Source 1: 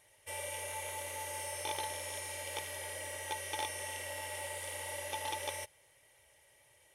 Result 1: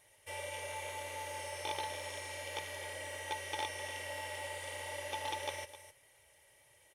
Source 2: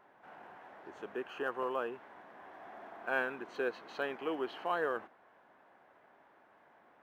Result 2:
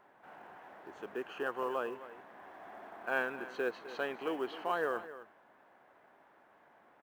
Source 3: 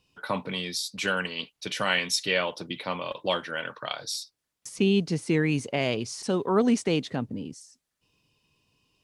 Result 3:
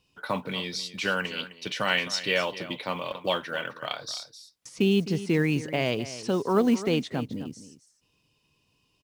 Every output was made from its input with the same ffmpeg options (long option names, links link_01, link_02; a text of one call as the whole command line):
ffmpeg -i in.wav -filter_complex "[0:a]aecho=1:1:259:0.188,acrossover=split=6500[link_01][link_02];[link_02]acompressor=threshold=-54dB:ratio=4:attack=1:release=60[link_03];[link_01][link_03]amix=inputs=2:normalize=0,acrusher=bits=8:mode=log:mix=0:aa=0.000001" out.wav